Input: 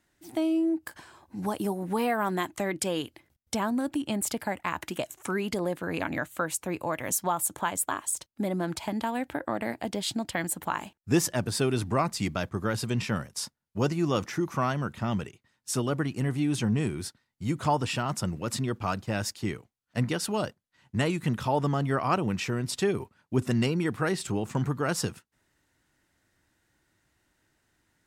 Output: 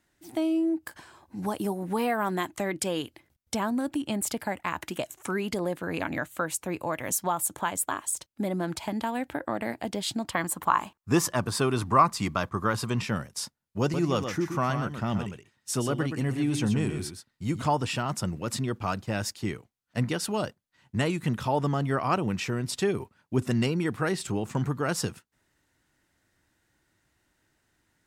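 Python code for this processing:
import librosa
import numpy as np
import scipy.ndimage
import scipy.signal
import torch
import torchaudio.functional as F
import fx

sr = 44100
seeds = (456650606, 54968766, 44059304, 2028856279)

y = fx.peak_eq(x, sr, hz=1100.0, db=12.0, octaves=0.52, at=(10.23, 13.01))
y = fx.echo_single(y, sr, ms=124, db=-7.5, at=(13.81, 17.62))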